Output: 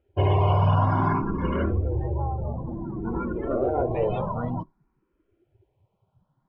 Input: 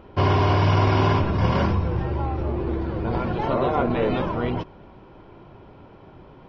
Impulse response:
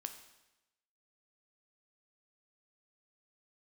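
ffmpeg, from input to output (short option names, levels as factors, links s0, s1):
-filter_complex "[0:a]asettb=1/sr,asplit=3[s0][s1][s2];[s0]atrim=end=1.564[s3];[s1]atrim=start=1.56:end=3.93,asetpts=PTS-STARTPTS,afade=t=in:d=0.004:c=qsin,afade=t=out:st=2.366:d=0.004:c=qsin,lowpass=3400[s4];[s2]atrim=start=3.926[s5];[s3][s4]acrossfade=d=0.004:c1=hsin:c2=qsin[s6];[s6][s5]acrossfade=d=0.004:c1=qsin:c2=hsin,afftdn=nr=25:nf=-29,asplit=2[s7][s8];[s8]afreqshift=0.55[s9];[s7][s9]amix=inputs=2:normalize=1"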